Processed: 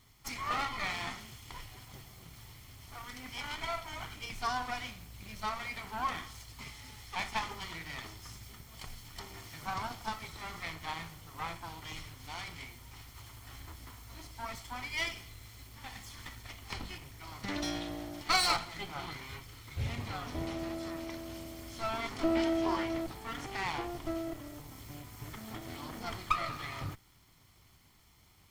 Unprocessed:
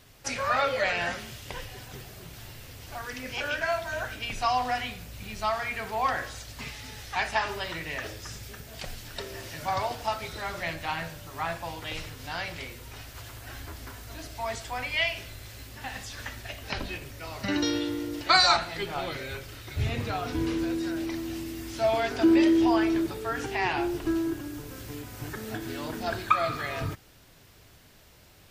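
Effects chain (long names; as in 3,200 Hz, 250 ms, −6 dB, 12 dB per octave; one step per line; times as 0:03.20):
lower of the sound and its delayed copy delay 0.92 ms
level −6.5 dB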